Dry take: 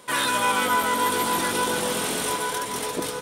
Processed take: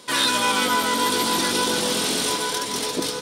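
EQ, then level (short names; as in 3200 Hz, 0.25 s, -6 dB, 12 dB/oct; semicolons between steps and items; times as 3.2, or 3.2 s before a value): bell 270 Hz +6 dB 1.4 oct; bell 4700 Hz +11.5 dB 1.3 oct; -1.5 dB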